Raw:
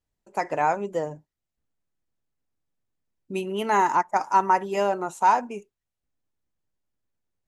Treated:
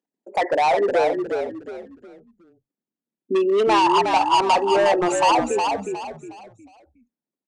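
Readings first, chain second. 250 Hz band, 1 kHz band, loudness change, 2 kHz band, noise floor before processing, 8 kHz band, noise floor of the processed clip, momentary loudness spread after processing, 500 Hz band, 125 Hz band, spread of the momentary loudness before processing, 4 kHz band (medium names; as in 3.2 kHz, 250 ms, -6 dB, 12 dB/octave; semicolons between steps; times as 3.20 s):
+8.5 dB, +3.5 dB, +4.5 dB, +5.0 dB, under -85 dBFS, +8.5 dB, under -85 dBFS, 15 LU, +9.0 dB, no reading, 13 LU, +15.0 dB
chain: resonances exaggerated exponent 2; steep high-pass 230 Hz 36 dB/octave; in parallel at -1 dB: compression, threshold -27 dBFS, peak gain reduction 12 dB; on the sum: overload inside the chain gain 22.5 dB; on a send: frequency-shifting echo 362 ms, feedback 32%, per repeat -42 Hz, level -5 dB; on the sum: resampled via 22.05 kHz; trim +7 dB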